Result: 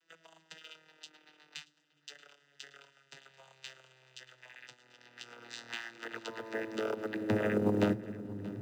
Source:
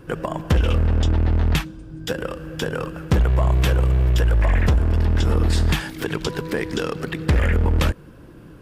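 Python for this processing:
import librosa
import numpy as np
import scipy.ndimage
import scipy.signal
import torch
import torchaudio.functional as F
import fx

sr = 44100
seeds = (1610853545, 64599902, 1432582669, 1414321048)

p1 = fx.vocoder_glide(x, sr, note=52, semitones=-9)
p2 = fx.echo_feedback(p1, sr, ms=630, feedback_pct=49, wet_db=-19.5)
p3 = fx.filter_sweep_highpass(p2, sr, from_hz=3600.0, to_hz=170.0, start_s=4.82, end_s=8.37, q=0.78)
p4 = fx.quant_float(p3, sr, bits=2)
p5 = p3 + (p4 * librosa.db_to_amplitude(-7.0))
p6 = fx.low_shelf(p5, sr, hz=220.0, db=10.0)
y = fx.notch_comb(p6, sr, f0_hz=1100.0)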